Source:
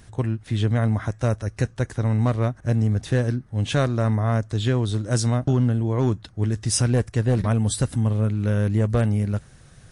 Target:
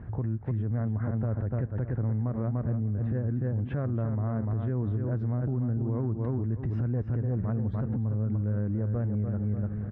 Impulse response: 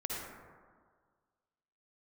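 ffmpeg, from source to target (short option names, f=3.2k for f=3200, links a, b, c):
-filter_complex "[0:a]highpass=f=62:p=1,lowshelf=f=440:g=10.5,asplit=2[a][b];[b]aecho=0:1:295|590|885:0.376|0.094|0.0235[c];[a][c]amix=inputs=2:normalize=0,acompressor=threshold=-20dB:ratio=6,lowpass=f=1.7k:w=0.5412,lowpass=f=1.7k:w=1.3066,alimiter=limit=-23dB:level=0:latency=1:release=71"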